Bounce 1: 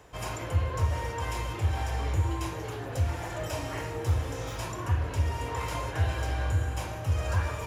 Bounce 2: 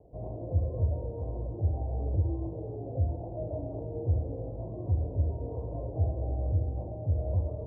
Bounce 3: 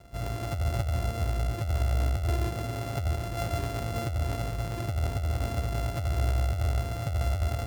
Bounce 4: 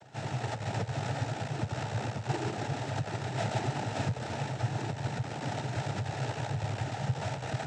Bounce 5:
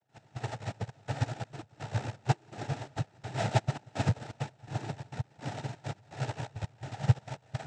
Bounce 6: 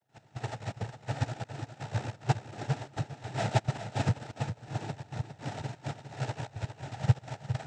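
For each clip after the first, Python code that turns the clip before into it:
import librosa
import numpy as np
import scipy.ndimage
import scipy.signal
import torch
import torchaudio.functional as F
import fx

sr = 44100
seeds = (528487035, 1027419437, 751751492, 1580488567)

y1 = scipy.signal.sosfilt(scipy.signal.ellip(4, 1.0, 60, 670.0, 'lowpass', fs=sr, output='sos'), x)
y2 = np.r_[np.sort(y1[:len(y1) // 64 * 64].reshape(-1, 64), axis=1).ravel(), y1[len(y1) // 64 * 64:]]
y2 = fx.low_shelf(y2, sr, hz=200.0, db=6.0)
y2 = fx.over_compress(y2, sr, threshold_db=-26.0, ratio=-1.0)
y3 = fx.noise_vocoder(y2, sr, seeds[0], bands=12)
y4 = fx.step_gate(y3, sr, bpm=167, pattern='.x..xxxx', floor_db=-12.0, edge_ms=4.5)
y4 = y4 + 10.0 ** (-14.0 / 20.0) * np.pad(y4, (int(185 * sr / 1000.0), 0))[:len(y4)]
y4 = fx.upward_expand(y4, sr, threshold_db=-41.0, expansion=2.5)
y4 = F.gain(torch.from_numpy(y4), 8.5).numpy()
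y5 = y4 + 10.0 ** (-9.5 / 20.0) * np.pad(y4, (int(407 * sr / 1000.0), 0))[:len(y4)]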